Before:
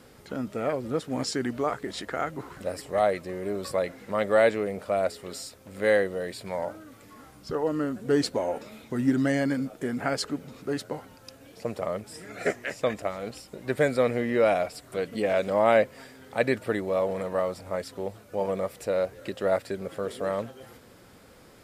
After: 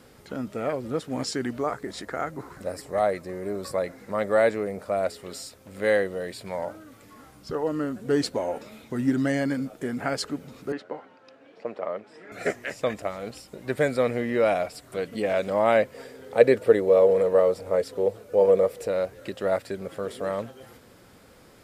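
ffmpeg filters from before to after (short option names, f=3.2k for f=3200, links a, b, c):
-filter_complex "[0:a]asettb=1/sr,asplit=3[a][b][c];[a]atrim=end=1.584[d];[b]atrim=start=1.58:end=5.02,asetpts=PTS-STARTPTS,afade=t=in:d=0.004:c=qsin,afade=t=out:st=3.436:d=0.004:c=qsin,equalizer=f=3k:t=o:w=0.6:g=-7[e];[c]atrim=start=5.016[f];[d][e]acrossfade=d=0.004:c1=hsin:c2=qsin[g];[g][f]acrossfade=d=0.004:c1=qsin:c2=hsin,asettb=1/sr,asplit=3[h][i][j];[h]atrim=end=10.724[k];[i]atrim=start=10.72:end=12.32,asetpts=PTS-STARTPTS,afade=t=in:d=0.004:c=qsin,afade=t=out:st=1.596:d=0.004:c=qsin,highpass=300,lowpass=2.5k[l];[j]atrim=start=12.316[m];[k][l]acrossfade=d=0.004:c1=hsin:c2=qsin[n];[n][m]acrossfade=d=0.004:c1=qsin:c2=hsin,asettb=1/sr,asplit=3[o][p][q];[o]atrim=end=15.944[r];[p]atrim=start=15.94:end=18.88,asetpts=PTS-STARTPTS,afade=t=in:d=0.004:c=qsin,afade=t=out:st=2.936:d=0.004:c=qsin,equalizer=f=470:w=2.6:g=13.5[s];[q]atrim=start=18.876[t];[r][s]acrossfade=d=0.004:c1=hsin:c2=qsin[u];[u][t]acrossfade=d=0.004:c1=qsin:c2=hsin"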